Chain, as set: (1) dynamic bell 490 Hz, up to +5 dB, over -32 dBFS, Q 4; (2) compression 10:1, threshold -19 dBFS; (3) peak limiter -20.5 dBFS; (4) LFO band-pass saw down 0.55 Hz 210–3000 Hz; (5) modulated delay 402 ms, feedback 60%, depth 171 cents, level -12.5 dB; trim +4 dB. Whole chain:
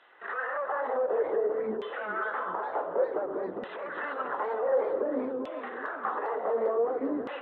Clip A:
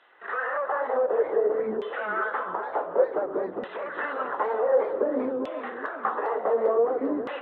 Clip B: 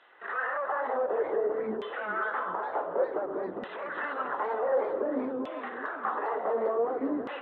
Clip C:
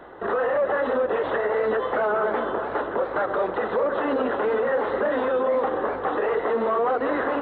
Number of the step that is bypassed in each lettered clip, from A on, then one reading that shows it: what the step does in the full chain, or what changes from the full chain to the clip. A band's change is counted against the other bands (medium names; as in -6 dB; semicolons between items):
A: 3, mean gain reduction 3.0 dB; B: 1, 500 Hz band -2.0 dB; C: 4, crest factor change -4.0 dB